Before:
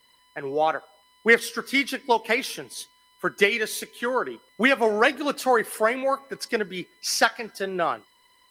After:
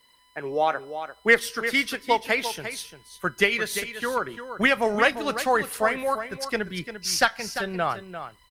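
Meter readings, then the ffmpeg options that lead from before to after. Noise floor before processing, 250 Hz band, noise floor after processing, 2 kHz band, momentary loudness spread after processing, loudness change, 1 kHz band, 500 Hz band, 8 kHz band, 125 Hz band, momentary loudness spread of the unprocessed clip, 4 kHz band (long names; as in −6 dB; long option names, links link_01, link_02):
−61 dBFS, −1.5 dB, −59 dBFS, 0.0 dB, 13 LU, −0.5 dB, −0.5 dB, −2.0 dB, +0.5 dB, +3.5 dB, 14 LU, +0.5 dB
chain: -filter_complex "[0:a]asubboost=boost=9.5:cutoff=100,asplit=2[link_01][link_02];[link_02]aecho=0:1:346:0.299[link_03];[link_01][link_03]amix=inputs=2:normalize=0"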